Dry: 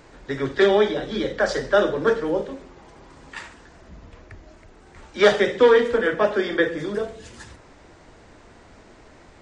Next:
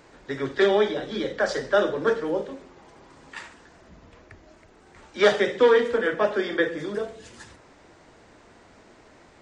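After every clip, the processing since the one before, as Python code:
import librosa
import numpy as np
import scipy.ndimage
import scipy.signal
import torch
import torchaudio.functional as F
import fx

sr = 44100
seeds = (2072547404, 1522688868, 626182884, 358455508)

y = fx.low_shelf(x, sr, hz=78.0, db=-11.0)
y = y * 10.0 ** (-2.5 / 20.0)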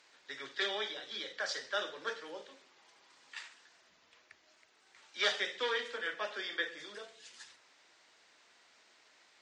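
y = fx.bandpass_q(x, sr, hz=4200.0, q=0.93)
y = y * 10.0 ** (-2.0 / 20.0)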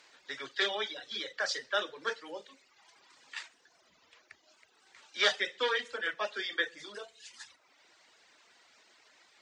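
y = fx.dereverb_blind(x, sr, rt60_s=0.97)
y = y * 10.0 ** (4.5 / 20.0)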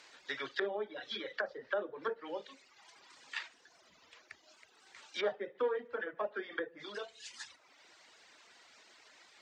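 y = fx.env_lowpass_down(x, sr, base_hz=630.0, full_db=-31.0)
y = y * 10.0 ** (2.0 / 20.0)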